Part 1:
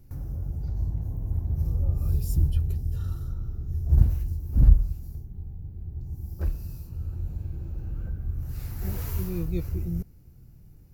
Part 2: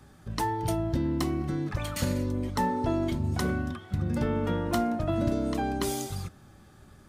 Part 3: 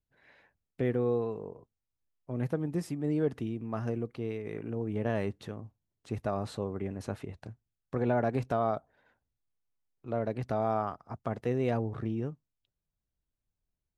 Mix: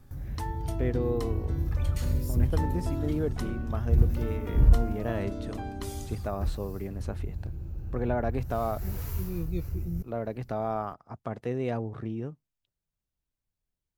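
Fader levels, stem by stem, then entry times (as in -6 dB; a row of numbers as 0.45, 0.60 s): -3.0, -9.0, -1.0 dB; 0.00, 0.00, 0.00 s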